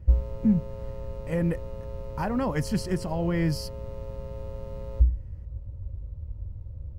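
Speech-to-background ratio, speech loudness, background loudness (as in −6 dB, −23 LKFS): 6.5 dB, −28.5 LKFS, −35.0 LKFS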